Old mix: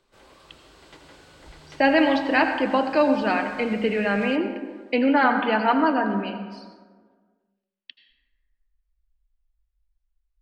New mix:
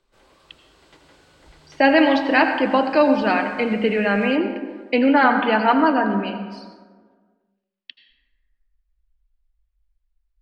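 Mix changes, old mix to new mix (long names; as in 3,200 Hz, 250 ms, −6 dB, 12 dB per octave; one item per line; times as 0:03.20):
speech +3.5 dB
background −3.5 dB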